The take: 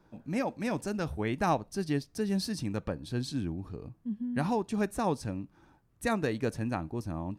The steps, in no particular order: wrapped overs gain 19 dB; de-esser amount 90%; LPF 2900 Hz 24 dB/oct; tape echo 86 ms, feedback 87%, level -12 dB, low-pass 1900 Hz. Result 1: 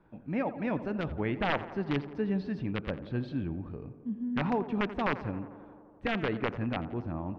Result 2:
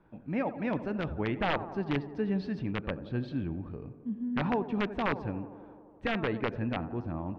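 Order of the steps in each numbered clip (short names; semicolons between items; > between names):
de-esser > wrapped overs > LPF > tape echo; tape echo > wrapped overs > LPF > de-esser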